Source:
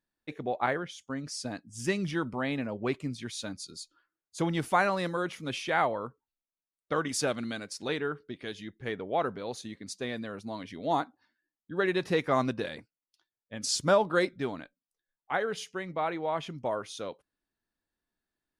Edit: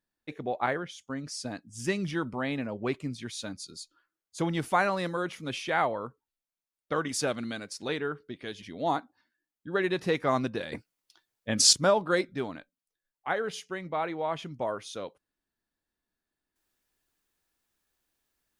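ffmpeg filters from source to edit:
ffmpeg -i in.wav -filter_complex "[0:a]asplit=4[link_01][link_02][link_03][link_04];[link_01]atrim=end=8.622[link_05];[link_02]atrim=start=10.658:end=12.762[link_06];[link_03]atrim=start=12.758:end=13.772,asetpts=PTS-STARTPTS,volume=10.5dB[link_07];[link_04]atrim=start=13.768[link_08];[link_05][link_06]acrossfade=duration=0.004:curve1=hsin:curve2=hsin[link_09];[link_09][link_07]acrossfade=duration=0.004:curve1=hsin:curve2=hsin[link_10];[link_10][link_08]acrossfade=duration=0.004:curve1=hsin:curve2=hsin" out.wav

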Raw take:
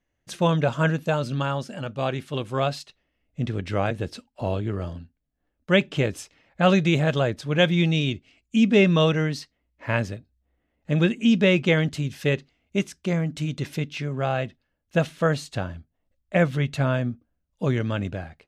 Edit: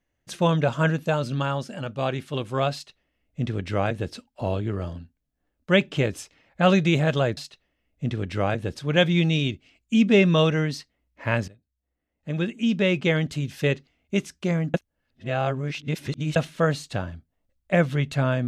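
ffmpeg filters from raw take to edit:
ffmpeg -i in.wav -filter_complex "[0:a]asplit=6[link_01][link_02][link_03][link_04][link_05][link_06];[link_01]atrim=end=7.372[link_07];[link_02]atrim=start=2.728:end=4.112[link_08];[link_03]atrim=start=7.368:end=10.1,asetpts=PTS-STARTPTS,afade=type=out:start_time=2.728:duration=0.004:curve=hsin:silence=0.125893[link_09];[link_04]atrim=start=10.1:end=13.362,asetpts=PTS-STARTPTS,afade=type=in:duration=2.09:silence=0.125893[link_10];[link_05]atrim=start=13.358:end=14.982,asetpts=PTS-STARTPTS,areverse[link_11];[link_06]atrim=start=14.978[link_12];[link_07][link_08]acrossfade=duration=0.004:curve1=hsin:curve2=hsin[link_13];[link_09][link_10]concat=n=2:v=0:a=1[link_14];[link_13][link_14]acrossfade=duration=0.004:curve1=hsin:curve2=hsin[link_15];[link_15][link_11]acrossfade=duration=0.004:curve1=hsin:curve2=hsin[link_16];[link_16][link_12]acrossfade=duration=0.004:curve1=hsin:curve2=hsin" out.wav

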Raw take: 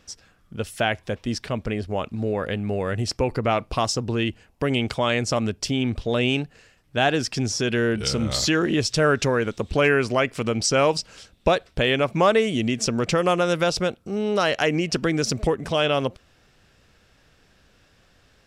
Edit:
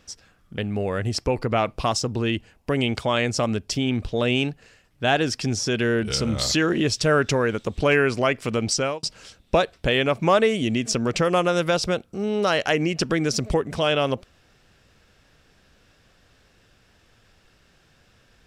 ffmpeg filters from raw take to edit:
ffmpeg -i in.wav -filter_complex "[0:a]asplit=3[link_01][link_02][link_03];[link_01]atrim=end=0.582[link_04];[link_02]atrim=start=2.508:end=10.96,asetpts=PTS-STARTPTS,afade=type=out:start_time=8.132:duration=0.32[link_05];[link_03]atrim=start=10.96,asetpts=PTS-STARTPTS,afade=type=in:duration=0.004:curve=hsin[link_06];[link_05][link_06]concat=n=2:v=0:a=1[link_07];[link_04][link_07]acrossfade=duration=0.004:curve1=hsin:curve2=hsin" out.wav

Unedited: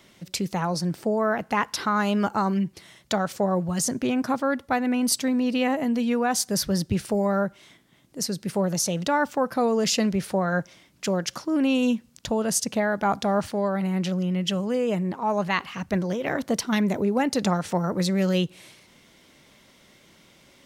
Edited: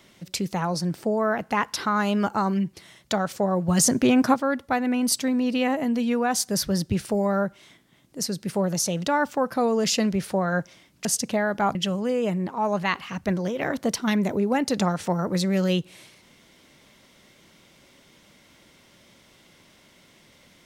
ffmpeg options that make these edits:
ffmpeg -i in.wav -filter_complex "[0:a]asplit=5[link_01][link_02][link_03][link_04][link_05];[link_01]atrim=end=3.682[link_06];[link_02]atrim=start=3.678:end=4.342,asetpts=PTS-STARTPTS,volume=6dB[link_07];[link_03]atrim=start=4.338:end=11.052[link_08];[link_04]atrim=start=12.478:end=13.182[link_09];[link_05]atrim=start=14.398[link_10];[link_06][link_07]acrossfade=duration=0.004:curve1=hsin:curve2=hsin[link_11];[link_11][link_08]acrossfade=duration=0.004:curve1=hsin:curve2=hsin[link_12];[link_12][link_09]acrossfade=duration=0.004:curve1=hsin:curve2=hsin[link_13];[link_13][link_10]acrossfade=duration=0.004:curve1=hsin:curve2=hsin" out.wav

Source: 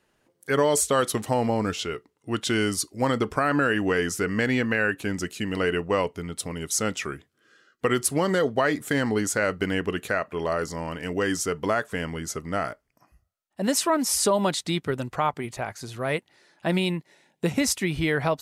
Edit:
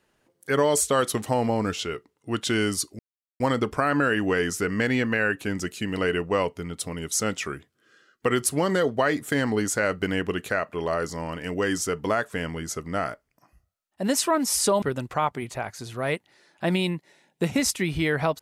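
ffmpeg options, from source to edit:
ffmpeg -i in.wav -filter_complex "[0:a]asplit=3[link_01][link_02][link_03];[link_01]atrim=end=2.99,asetpts=PTS-STARTPTS,afade=type=out:start_time=2.986:duration=0.004:curve=hsin,apad=pad_dur=0.41[link_04];[link_02]atrim=start=2.99:end=14.412,asetpts=PTS-STARTPTS,afade=type=in:duration=0.004:curve=hsin[link_05];[link_03]atrim=start=14.838[link_06];[link_04][link_05]concat=n=2:v=0:a=1[link_07];[link_07][link_06]acrossfade=duration=0.004:curve1=hsin:curve2=hsin" out.wav

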